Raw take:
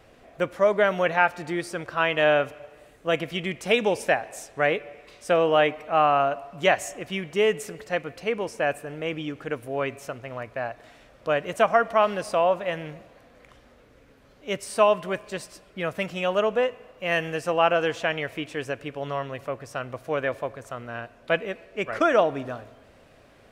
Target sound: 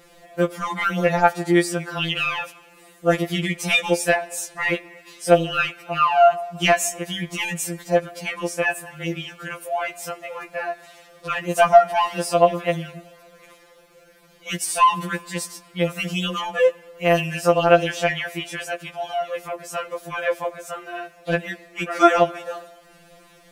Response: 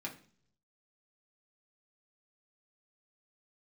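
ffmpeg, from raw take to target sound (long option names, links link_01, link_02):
-filter_complex "[0:a]highshelf=frequency=5600:gain=12,asplit=2[link_01][link_02];[link_02]acontrast=85,volume=-1.5dB[link_03];[link_01][link_03]amix=inputs=2:normalize=0,afftfilt=real='re*2.83*eq(mod(b,8),0)':imag='im*2.83*eq(mod(b,8),0)':win_size=2048:overlap=0.75,volume=-3.5dB"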